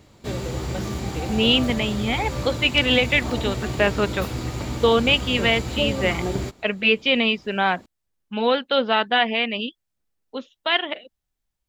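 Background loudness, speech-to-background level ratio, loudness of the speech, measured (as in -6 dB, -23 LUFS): -29.0 LUFS, 7.5 dB, -21.5 LUFS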